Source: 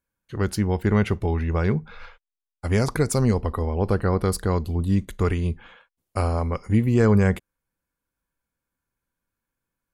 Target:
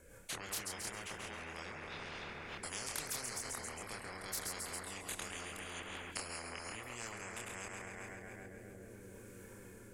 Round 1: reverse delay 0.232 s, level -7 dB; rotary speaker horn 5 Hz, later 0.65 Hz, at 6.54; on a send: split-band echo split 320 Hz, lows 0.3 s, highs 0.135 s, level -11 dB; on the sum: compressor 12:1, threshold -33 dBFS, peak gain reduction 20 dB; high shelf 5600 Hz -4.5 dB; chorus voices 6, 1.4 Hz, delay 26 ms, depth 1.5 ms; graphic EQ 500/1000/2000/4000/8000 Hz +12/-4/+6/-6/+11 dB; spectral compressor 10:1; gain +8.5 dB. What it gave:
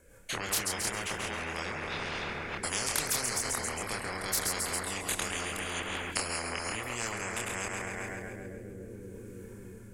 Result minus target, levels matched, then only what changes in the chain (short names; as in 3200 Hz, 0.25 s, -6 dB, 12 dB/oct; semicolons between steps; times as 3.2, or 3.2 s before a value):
compressor: peak gain reduction -10.5 dB
change: compressor 12:1, threshold -44.5 dBFS, peak gain reduction 30.5 dB